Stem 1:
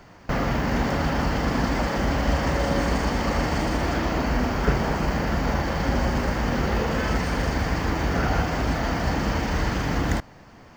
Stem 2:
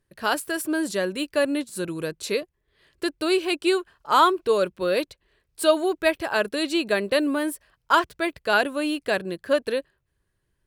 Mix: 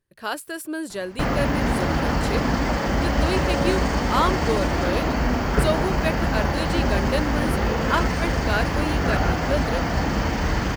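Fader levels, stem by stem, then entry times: +1.5, -4.5 dB; 0.90, 0.00 s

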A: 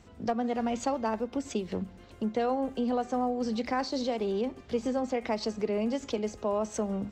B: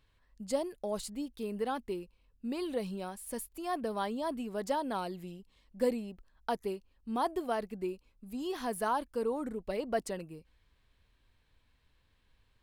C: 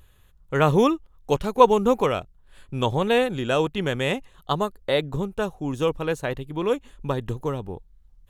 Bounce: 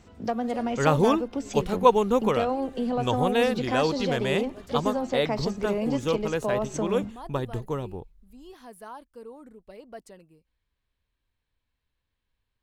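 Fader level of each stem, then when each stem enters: +1.5, -10.5, -3.0 dB; 0.00, 0.00, 0.25 s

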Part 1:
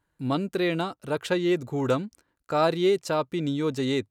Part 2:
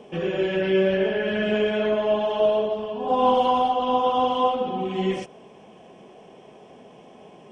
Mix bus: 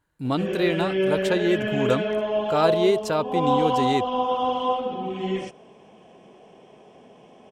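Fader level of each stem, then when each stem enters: +1.5, -2.5 dB; 0.00, 0.25 s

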